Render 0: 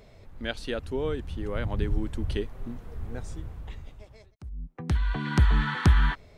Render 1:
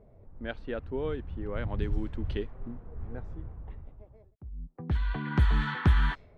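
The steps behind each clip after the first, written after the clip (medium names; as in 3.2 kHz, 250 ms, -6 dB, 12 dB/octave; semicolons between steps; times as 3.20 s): level-controlled noise filter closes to 710 Hz, open at -18 dBFS; trim -3 dB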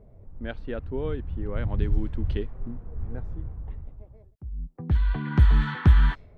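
bass shelf 220 Hz +7 dB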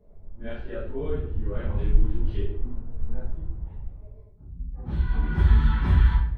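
phase randomisation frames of 100 ms; simulated room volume 110 m³, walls mixed, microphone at 1.4 m; trim -8 dB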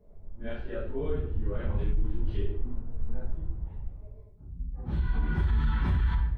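peak limiter -17.5 dBFS, peak gain reduction 11.5 dB; trim -1.5 dB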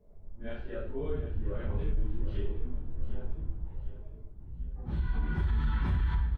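feedback delay 752 ms, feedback 44%, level -12 dB; trim -3 dB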